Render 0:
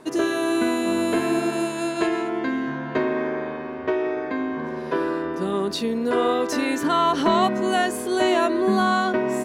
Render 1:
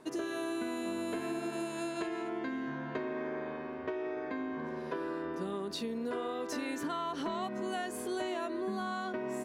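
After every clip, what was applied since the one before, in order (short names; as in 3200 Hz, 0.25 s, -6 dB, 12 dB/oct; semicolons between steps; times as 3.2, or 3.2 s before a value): compressor, threshold -24 dBFS, peak gain reduction 9 dB; gain -9 dB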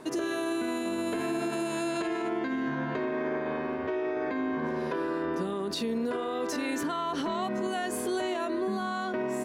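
limiter -32 dBFS, peak gain reduction 8 dB; gain +9 dB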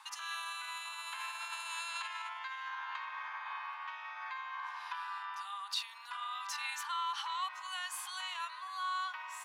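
rippled Chebyshev high-pass 810 Hz, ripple 6 dB; gain +1 dB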